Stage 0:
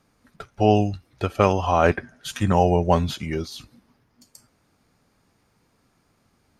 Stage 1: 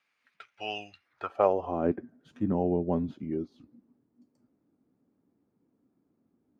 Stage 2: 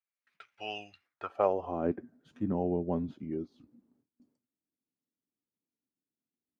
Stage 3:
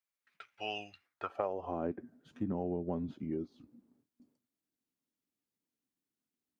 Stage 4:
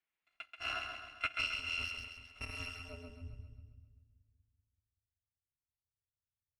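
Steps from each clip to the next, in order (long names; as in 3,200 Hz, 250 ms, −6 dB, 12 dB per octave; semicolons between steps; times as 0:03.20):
band-pass filter sweep 2,400 Hz → 280 Hz, 0:00.96–0:01.78
noise gate with hold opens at −56 dBFS; level −3.5 dB
downward compressor 4 to 1, threshold −33 dBFS, peak gain reduction 11 dB; level +1 dB
samples in bit-reversed order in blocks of 256 samples; low-pass filter sweep 2,400 Hz → 110 Hz, 0:02.66–0:03.28; echo with a time of its own for lows and highs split 310 Hz, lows 191 ms, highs 133 ms, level −5.5 dB; level +2 dB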